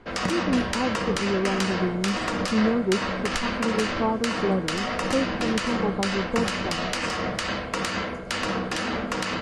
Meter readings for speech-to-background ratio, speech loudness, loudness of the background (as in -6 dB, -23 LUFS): -0.5 dB, -28.0 LUFS, -27.5 LUFS